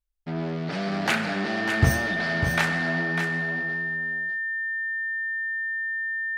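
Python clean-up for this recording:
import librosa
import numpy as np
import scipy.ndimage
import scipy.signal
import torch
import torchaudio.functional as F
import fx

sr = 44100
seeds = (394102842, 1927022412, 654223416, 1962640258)

y = fx.notch(x, sr, hz=1800.0, q=30.0)
y = fx.fix_echo_inverse(y, sr, delay_ms=599, level_db=-7.5)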